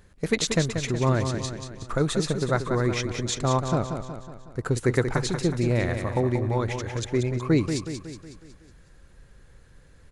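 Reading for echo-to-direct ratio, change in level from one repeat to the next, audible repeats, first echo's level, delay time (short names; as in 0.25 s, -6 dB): -6.0 dB, -5.5 dB, 5, -7.5 dB, 0.184 s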